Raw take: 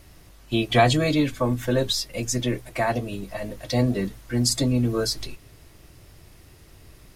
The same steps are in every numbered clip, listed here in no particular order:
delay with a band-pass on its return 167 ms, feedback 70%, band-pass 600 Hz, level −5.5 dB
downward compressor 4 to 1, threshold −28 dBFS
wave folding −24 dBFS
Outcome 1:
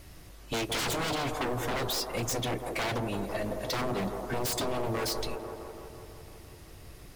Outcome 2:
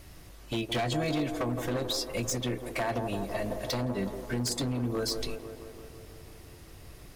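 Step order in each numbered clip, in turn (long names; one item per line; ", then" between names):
wave folding, then delay with a band-pass on its return, then downward compressor
downward compressor, then wave folding, then delay with a band-pass on its return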